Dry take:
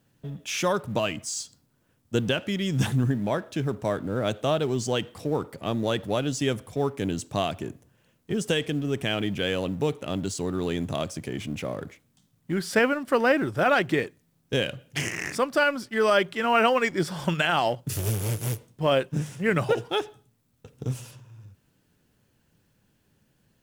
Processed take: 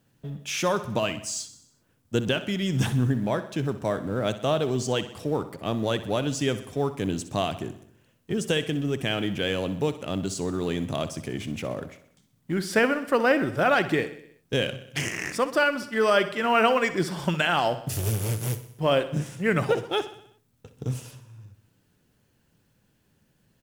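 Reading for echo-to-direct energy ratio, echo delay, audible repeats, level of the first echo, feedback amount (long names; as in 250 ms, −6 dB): −12.5 dB, 63 ms, 5, −14.0 dB, 57%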